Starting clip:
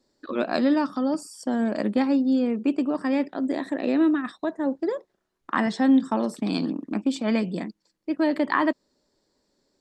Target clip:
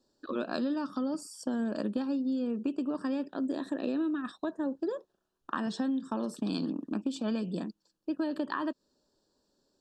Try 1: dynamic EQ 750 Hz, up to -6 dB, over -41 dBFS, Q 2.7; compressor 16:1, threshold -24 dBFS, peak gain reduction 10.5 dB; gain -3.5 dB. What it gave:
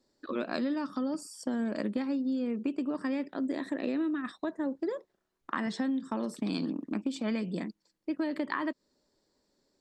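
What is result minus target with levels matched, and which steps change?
2000 Hz band +3.5 dB
add after compressor: Butterworth band-stop 2100 Hz, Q 2.6

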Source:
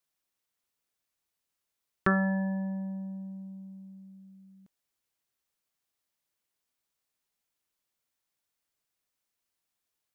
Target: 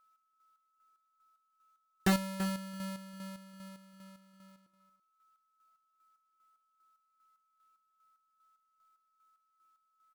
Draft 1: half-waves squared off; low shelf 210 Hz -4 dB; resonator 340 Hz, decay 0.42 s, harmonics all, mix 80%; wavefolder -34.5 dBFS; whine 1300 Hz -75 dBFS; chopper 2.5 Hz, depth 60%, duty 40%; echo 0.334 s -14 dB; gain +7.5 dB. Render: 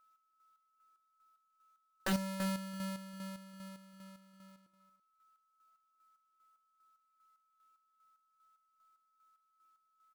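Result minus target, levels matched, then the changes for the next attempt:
wavefolder: distortion +12 dB
change: wavefolder -28 dBFS

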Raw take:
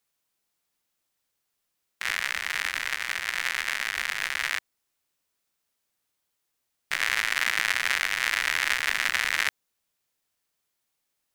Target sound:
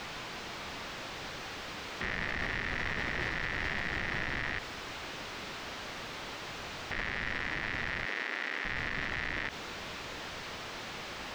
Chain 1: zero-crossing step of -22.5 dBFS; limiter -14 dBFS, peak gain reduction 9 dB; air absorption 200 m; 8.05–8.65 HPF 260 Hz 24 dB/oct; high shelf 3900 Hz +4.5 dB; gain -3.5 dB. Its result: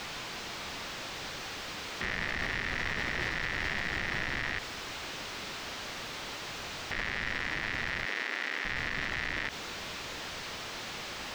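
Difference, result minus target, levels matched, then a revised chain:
8000 Hz band +3.5 dB
zero-crossing step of -22.5 dBFS; limiter -14 dBFS, peak gain reduction 9 dB; air absorption 200 m; 8.05–8.65 HPF 260 Hz 24 dB/oct; high shelf 3900 Hz -2.5 dB; gain -3.5 dB

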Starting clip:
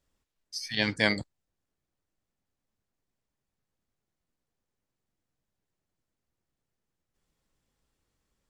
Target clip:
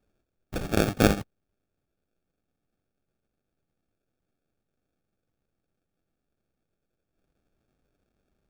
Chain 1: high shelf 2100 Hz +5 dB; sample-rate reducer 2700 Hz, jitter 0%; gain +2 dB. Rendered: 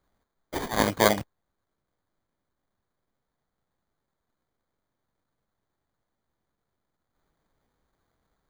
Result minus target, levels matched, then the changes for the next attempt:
sample-rate reducer: distortion -5 dB
change: sample-rate reducer 1000 Hz, jitter 0%

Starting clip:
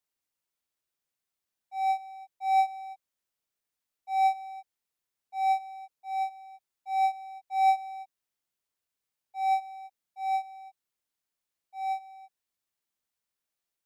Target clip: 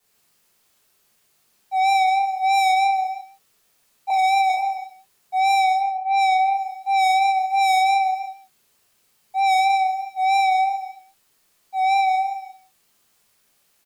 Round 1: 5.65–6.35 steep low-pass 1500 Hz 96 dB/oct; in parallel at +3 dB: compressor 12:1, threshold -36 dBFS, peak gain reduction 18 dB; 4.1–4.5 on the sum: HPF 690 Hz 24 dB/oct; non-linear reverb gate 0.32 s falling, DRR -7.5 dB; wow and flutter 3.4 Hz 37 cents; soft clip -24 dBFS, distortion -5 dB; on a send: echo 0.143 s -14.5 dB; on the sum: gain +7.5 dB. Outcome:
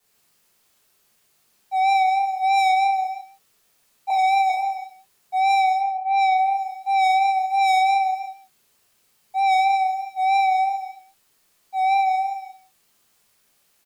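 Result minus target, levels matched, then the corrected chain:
compressor: peak gain reduction +10.5 dB
5.65–6.35 steep low-pass 1500 Hz 96 dB/oct; in parallel at +3 dB: compressor 12:1, threshold -24.5 dBFS, peak gain reduction 7.5 dB; 4.1–4.5 on the sum: HPF 690 Hz 24 dB/oct; non-linear reverb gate 0.32 s falling, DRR -7.5 dB; wow and flutter 3.4 Hz 37 cents; soft clip -24 dBFS, distortion -4 dB; on a send: echo 0.143 s -14.5 dB; on the sum: gain +7.5 dB

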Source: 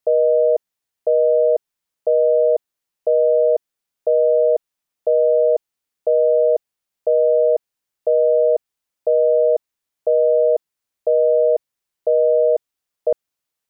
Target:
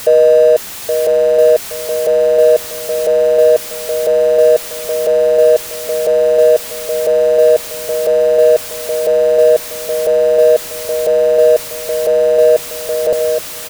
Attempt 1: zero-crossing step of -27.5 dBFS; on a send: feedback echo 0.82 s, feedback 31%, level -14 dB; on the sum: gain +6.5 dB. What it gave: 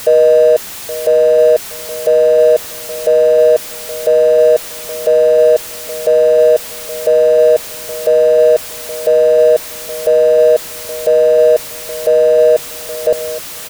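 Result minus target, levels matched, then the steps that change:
echo-to-direct -7.5 dB
change: feedback echo 0.82 s, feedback 31%, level -6.5 dB

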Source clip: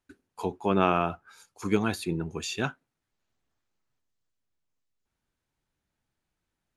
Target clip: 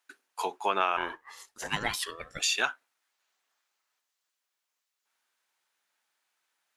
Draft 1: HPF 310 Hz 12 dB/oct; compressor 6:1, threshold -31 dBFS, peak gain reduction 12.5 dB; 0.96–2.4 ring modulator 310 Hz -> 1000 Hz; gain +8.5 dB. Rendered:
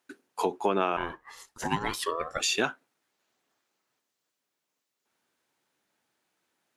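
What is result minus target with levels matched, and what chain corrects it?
250 Hz band +9.0 dB
HPF 910 Hz 12 dB/oct; compressor 6:1, threshold -31 dBFS, peak gain reduction 9 dB; 0.96–2.4 ring modulator 310 Hz -> 1000 Hz; gain +8.5 dB

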